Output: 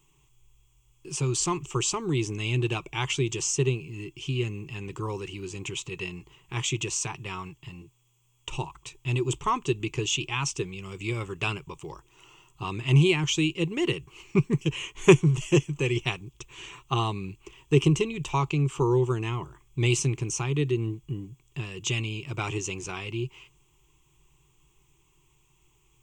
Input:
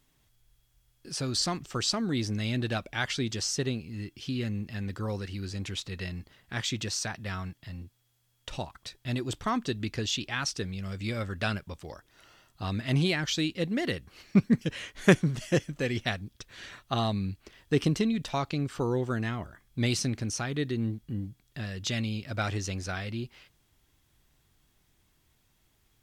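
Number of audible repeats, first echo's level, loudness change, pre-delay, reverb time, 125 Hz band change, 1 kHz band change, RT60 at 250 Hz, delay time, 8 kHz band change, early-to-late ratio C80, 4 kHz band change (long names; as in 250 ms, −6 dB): no echo audible, no echo audible, +3.0 dB, no reverb audible, no reverb audible, +5.0 dB, +4.0 dB, no reverb audible, no echo audible, +5.0 dB, no reverb audible, +1.0 dB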